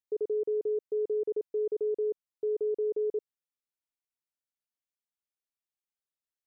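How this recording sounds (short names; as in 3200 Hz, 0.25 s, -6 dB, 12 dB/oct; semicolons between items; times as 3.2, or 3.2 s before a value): noise floor -95 dBFS; spectral tilt -0.5 dB/oct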